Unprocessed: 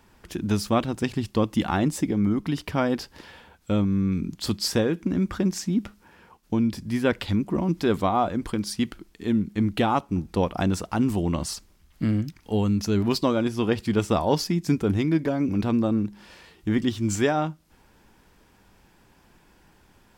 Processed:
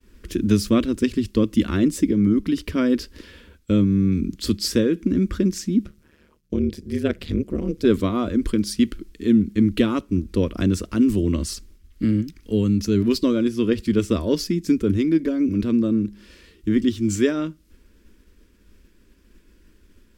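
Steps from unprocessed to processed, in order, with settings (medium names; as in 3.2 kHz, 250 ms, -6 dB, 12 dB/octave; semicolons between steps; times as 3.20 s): expander -53 dBFS; bass shelf 260 Hz +11.5 dB; gain riding within 4 dB 2 s; static phaser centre 330 Hz, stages 4; 5.85–7.85 s: AM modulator 150 Hz, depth 90%; trim +1.5 dB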